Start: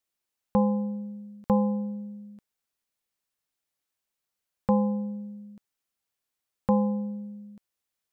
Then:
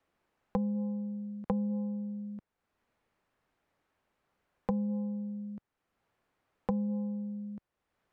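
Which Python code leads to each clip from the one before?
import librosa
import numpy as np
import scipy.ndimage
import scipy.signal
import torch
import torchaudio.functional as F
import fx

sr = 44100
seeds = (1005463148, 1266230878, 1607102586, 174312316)

y = fx.env_lowpass_down(x, sr, base_hz=310.0, full_db=-20.5)
y = fx.lowpass(y, sr, hz=1500.0, slope=6)
y = fx.band_squash(y, sr, depth_pct=70)
y = y * 10.0 ** (-4.0 / 20.0)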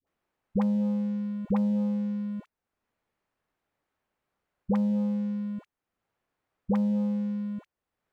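y = fx.leveller(x, sr, passes=2)
y = fx.dispersion(y, sr, late='highs', ms=70.0, hz=600.0)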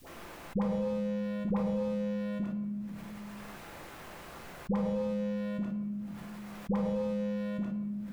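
y = fx.room_shoebox(x, sr, seeds[0], volume_m3=220.0, walls='mixed', distance_m=0.81)
y = fx.env_flatten(y, sr, amount_pct=70)
y = y * 10.0 ** (-6.0 / 20.0)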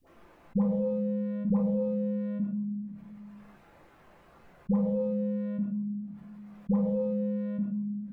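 y = fx.spectral_expand(x, sr, expansion=1.5)
y = y * 10.0 ** (3.5 / 20.0)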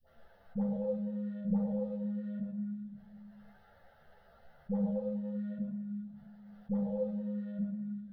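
y = fx.fixed_phaser(x, sr, hz=1600.0, stages=8)
y = fx.echo_stepped(y, sr, ms=110, hz=620.0, octaves=0.7, feedback_pct=70, wet_db=-4.0)
y = fx.ensemble(y, sr)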